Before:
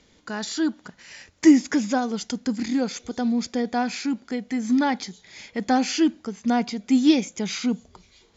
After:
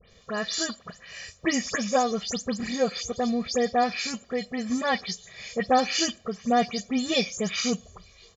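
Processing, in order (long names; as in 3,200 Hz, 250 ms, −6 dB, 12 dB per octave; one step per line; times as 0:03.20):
every frequency bin delayed by itself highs late, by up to 118 ms
comb filter 1.7 ms, depth 100%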